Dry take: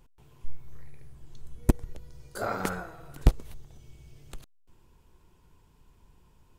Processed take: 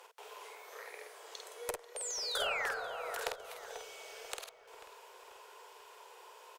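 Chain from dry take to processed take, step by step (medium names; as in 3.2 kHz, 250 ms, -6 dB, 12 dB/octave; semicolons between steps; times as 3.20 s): steep high-pass 420 Hz 72 dB/octave; Chebyshev shaper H 2 -17 dB, 6 -27 dB, 8 -22 dB, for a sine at -14 dBFS; compression 10:1, threshold -51 dBFS, peak gain reduction 23 dB; painted sound fall, 1.96–2.72 s, 1.5–9.2 kHz -53 dBFS; treble shelf 8.1 kHz -6 dB; doubling 49 ms -4.5 dB; filtered feedback delay 490 ms, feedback 55%, low-pass 2.1 kHz, level -11 dB; trim +14.5 dB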